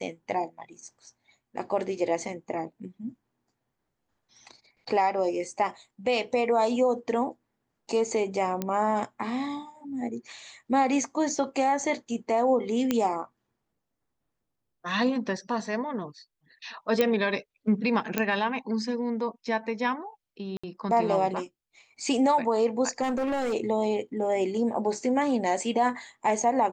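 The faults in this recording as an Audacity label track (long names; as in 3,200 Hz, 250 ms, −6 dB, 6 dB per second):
8.620000	8.620000	click −15 dBFS
12.910000	12.910000	click −11 dBFS
17.010000	17.010000	click −10 dBFS
18.180000	18.180000	click −10 dBFS
20.570000	20.640000	drop-out 65 ms
23.020000	23.540000	clipping −24.5 dBFS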